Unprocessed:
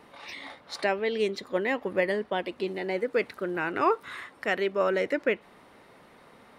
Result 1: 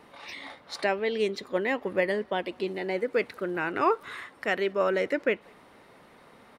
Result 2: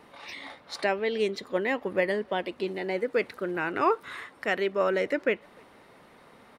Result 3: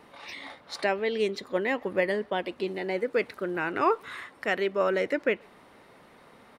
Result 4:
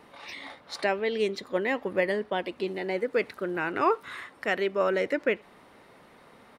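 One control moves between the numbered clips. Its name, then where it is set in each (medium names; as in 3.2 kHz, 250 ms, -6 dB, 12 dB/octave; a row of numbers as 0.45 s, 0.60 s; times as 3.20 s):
speakerphone echo, time: 190 ms, 300 ms, 130 ms, 80 ms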